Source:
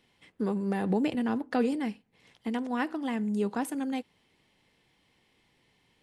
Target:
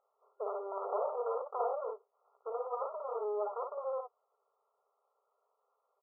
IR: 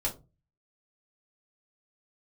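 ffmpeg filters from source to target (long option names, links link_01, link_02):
-af "aecho=1:1:57|69:0.631|0.133,aeval=exprs='abs(val(0))':channel_layout=same,afftfilt=real='re*between(b*sr/4096,390,1400)':imag='im*between(b*sr/4096,390,1400)':win_size=4096:overlap=0.75,volume=-1dB"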